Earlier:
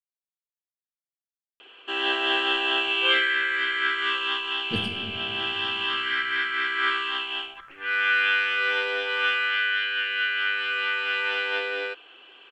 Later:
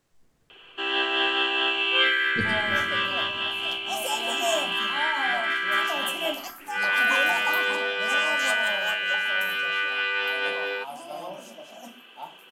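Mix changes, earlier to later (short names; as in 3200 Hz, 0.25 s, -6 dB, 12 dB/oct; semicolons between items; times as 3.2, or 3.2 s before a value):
speech: entry -2.35 s; first sound: entry -1.10 s; second sound: unmuted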